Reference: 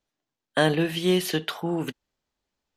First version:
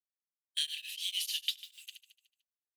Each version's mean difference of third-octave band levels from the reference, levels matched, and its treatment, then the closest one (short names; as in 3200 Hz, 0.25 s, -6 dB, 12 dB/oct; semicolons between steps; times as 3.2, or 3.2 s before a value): 22.5 dB: G.711 law mismatch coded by A; steep high-pass 2800 Hz 36 dB/oct; on a send: feedback echo 74 ms, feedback 58%, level -11.5 dB; on the sum: beating tremolo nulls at 6.7 Hz; gain +2 dB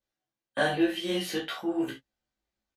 4.0 dB: high shelf 7100 Hz -4 dB; chorus 2 Hz, delay 16.5 ms, depth 5.2 ms; doubler 15 ms -6 dB; non-linear reverb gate 90 ms falling, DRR -1.5 dB; gain -6 dB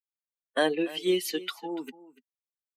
8.0 dB: per-bin expansion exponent 2; dynamic EQ 1200 Hz, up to -3 dB, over -36 dBFS, Q 1; HPF 270 Hz 24 dB/oct; on a send: echo 0.29 s -18.5 dB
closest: second